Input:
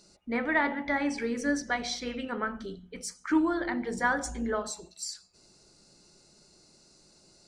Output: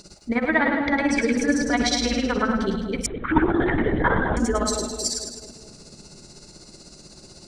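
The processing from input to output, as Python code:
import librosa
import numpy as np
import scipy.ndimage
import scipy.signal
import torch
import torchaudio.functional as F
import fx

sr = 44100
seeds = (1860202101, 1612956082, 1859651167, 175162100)

p1 = fx.low_shelf(x, sr, hz=210.0, db=7.0)
p2 = fx.over_compress(p1, sr, threshold_db=-35.0, ratio=-1.0)
p3 = p1 + (p2 * 10.0 ** (0.0 / 20.0))
p4 = p3 * (1.0 - 0.82 / 2.0 + 0.82 / 2.0 * np.cos(2.0 * np.pi * 16.0 * (np.arange(len(p3)) / sr)))
p5 = fx.echo_split(p4, sr, split_hz=700.0, low_ms=218, high_ms=105, feedback_pct=52, wet_db=-5.0)
p6 = fx.lpc_vocoder(p5, sr, seeds[0], excitation='whisper', order=16, at=(3.06, 4.37))
y = p6 * 10.0 ** (6.0 / 20.0)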